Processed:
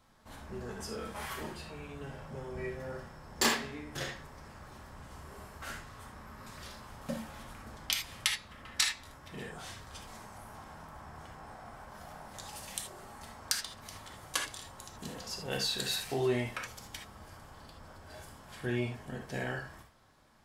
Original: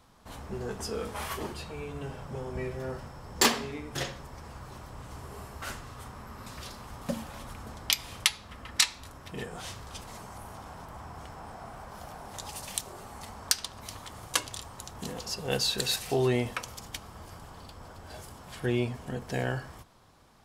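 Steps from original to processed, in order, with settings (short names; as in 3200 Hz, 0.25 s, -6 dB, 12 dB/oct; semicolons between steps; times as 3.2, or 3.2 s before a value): on a send: bell 1800 Hz +8 dB 1.1 oct + reverb, pre-delay 3 ms, DRR -0.5 dB; on the sum: gain -6.5 dB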